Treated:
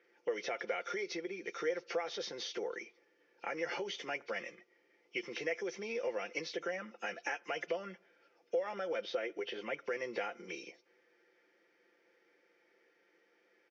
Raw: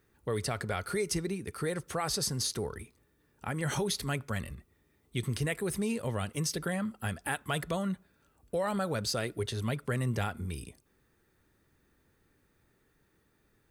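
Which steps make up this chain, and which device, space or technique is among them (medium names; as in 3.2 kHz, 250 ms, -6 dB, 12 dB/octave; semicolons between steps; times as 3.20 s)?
Chebyshev band-pass 300–7600 Hz, order 2; 9.02–9.82 s: treble shelf 6.8 kHz -9.5 dB; comb 5.8 ms, depth 61%; dynamic bell 5.8 kHz, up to -6 dB, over -47 dBFS, Q 1.3; hearing aid with frequency lowering (knee-point frequency compression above 2.3 kHz 1.5:1; compression 4:1, threshold -37 dBFS, peak gain reduction 11 dB; cabinet simulation 390–5800 Hz, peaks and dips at 480 Hz +7 dB, 1.1 kHz -7 dB, 2.2 kHz +9 dB, 4 kHz -7 dB); trim +1.5 dB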